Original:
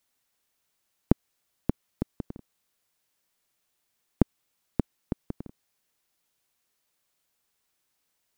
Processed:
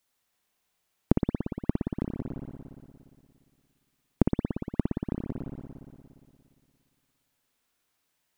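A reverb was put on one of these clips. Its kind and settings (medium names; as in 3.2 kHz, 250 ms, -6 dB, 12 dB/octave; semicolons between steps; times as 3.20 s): spring tank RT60 2.3 s, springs 58 ms, chirp 35 ms, DRR 0 dB; trim -1 dB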